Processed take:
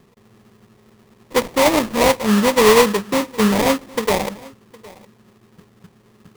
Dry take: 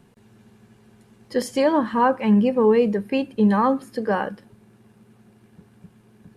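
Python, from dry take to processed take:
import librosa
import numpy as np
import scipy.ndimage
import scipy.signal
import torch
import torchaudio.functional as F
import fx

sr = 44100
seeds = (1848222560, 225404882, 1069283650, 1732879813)

p1 = fx.peak_eq(x, sr, hz=490.0, db=6.5, octaves=0.93)
p2 = fx.sample_hold(p1, sr, seeds[0], rate_hz=1500.0, jitter_pct=20)
y = p2 + fx.echo_single(p2, sr, ms=761, db=-22.5, dry=0)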